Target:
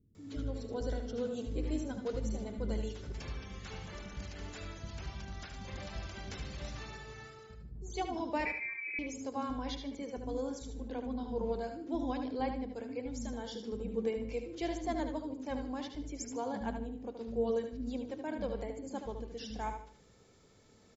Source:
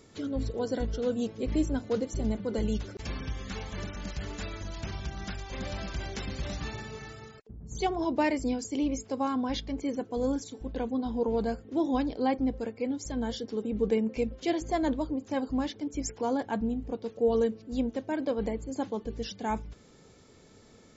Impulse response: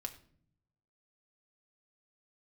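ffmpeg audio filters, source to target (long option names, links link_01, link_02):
-filter_complex "[0:a]acrossover=split=260[link_01][link_02];[link_02]adelay=150[link_03];[link_01][link_03]amix=inputs=2:normalize=0,asplit=2[link_04][link_05];[1:a]atrim=start_sample=2205,adelay=91[link_06];[link_05][link_06]afir=irnorm=-1:irlink=0,volume=-13.5dB[link_07];[link_04][link_07]amix=inputs=2:normalize=0,asettb=1/sr,asplit=3[link_08][link_09][link_10];[link_08]atrim=end=8.454[link_11];[link_09]atrim=start=8.45:end=8.99,asetpts=PTS-STARTPTS,afade=type=in:duration=0.004:curve=qsin,afade=type=out:start_time=0.536:duration=0.004:curve=qsin,lowpass=frequency=2200:width_type=q:width=0.5098,lowpass=frequency=2200:width_type=q:width=0.6013,lowpass=frequency=2200:width_type=q:width=0.9,lowpass=frequency=2200:width_type=q:width=2.563,afreqshift=-2600[link_12];[link_10]atrim=start=8.986[link_13];[link_11][link_12]acrossfade=duration=0.004:curve1=hsin:curve2=qsin[link_14];[link_14][link_13]acrossfade=duration=0.004:curve1=qsin:curve2=hsin,asplit=2[link_15][link_16];[link_16]aecho=0:1:75|150|225|300:0.422|0.131|0.0405|0.0126[link_17];[link_15][link_17]amix=inputs=2:normalize=0,volume=-7dB"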